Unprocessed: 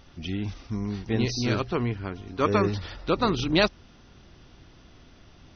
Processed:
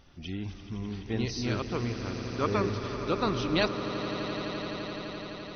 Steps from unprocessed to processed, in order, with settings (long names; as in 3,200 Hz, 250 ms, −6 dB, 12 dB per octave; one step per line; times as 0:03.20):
echo that builds up and dies away 85 ms, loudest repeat 8, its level −14 dB
level −5.5 dB